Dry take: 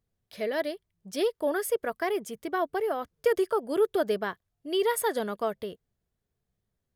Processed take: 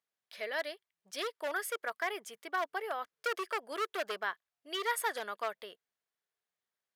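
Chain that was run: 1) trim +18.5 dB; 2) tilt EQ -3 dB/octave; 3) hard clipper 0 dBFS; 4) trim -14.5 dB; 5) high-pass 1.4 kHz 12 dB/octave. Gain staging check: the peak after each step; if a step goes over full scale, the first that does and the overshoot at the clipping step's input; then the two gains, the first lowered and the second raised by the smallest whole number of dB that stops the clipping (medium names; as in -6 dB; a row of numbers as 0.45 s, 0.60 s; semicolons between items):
+6.0 dBFS, +8.0 dBFS, 0.0 dBFS, -14.5 dBFS, -21.5 dBFS; step 1, 8.0 dB; step 1 +10.5 dB, step 4 -6.5 dB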